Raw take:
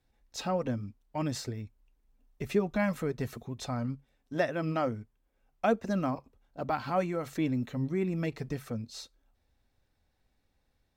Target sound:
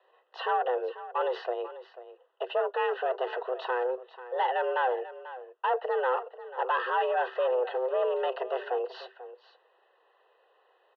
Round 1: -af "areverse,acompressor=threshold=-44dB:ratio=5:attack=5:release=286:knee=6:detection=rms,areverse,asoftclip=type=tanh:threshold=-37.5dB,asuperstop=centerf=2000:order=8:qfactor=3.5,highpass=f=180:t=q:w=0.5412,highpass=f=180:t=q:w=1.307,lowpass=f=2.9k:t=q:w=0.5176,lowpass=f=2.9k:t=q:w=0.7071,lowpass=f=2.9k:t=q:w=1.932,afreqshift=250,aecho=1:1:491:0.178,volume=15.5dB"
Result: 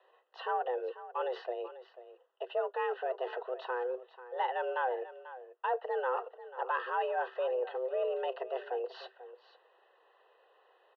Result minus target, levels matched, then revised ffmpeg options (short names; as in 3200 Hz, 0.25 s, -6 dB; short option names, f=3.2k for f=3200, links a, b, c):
compressor: peak gain reduction +9 dB
-af "areverse,acompressor=threshold=-33dB:ratio=5:attack=5:release=286:knee=6:detection=rms,areverse,asoftclip=type=tanh:threshold=-37.5dB,asuperstop=centerf=2000:order=8:qfactor=3.5,highpass=f=180:t=q:w=0.5412,highpass=f=180:t=q:w=1.307,lowpass=f=2.9k:t=q:w=0.5176,lowpass=f=2.9k:t=q:w=0.7071,lowpass=f=2.9k:t=q:w=1.932,afreqshift=250,aecho=1:1:491:0.178,volume=15.5dB"